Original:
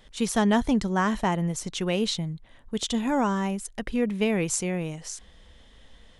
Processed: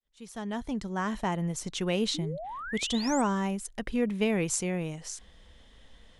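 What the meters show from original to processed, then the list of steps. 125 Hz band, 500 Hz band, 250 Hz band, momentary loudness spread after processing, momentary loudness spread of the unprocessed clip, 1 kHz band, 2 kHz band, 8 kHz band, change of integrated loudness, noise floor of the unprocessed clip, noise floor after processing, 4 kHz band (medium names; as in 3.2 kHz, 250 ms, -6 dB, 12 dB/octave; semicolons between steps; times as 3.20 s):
-4.0 dB, -4.0 dB, -5.0 dB, 10 LU, 12 LU, -5.0 dB, -4.0 dB, -3.0 dB, -4.0 dB, -54 dBFS, -57 dBFS, -2.5 dB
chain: fade-in on the opening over 1.72 s; painted sound rise, 2.14–3.22 s, 280–8500 Hz -36 dBFS; trim -2.5 dB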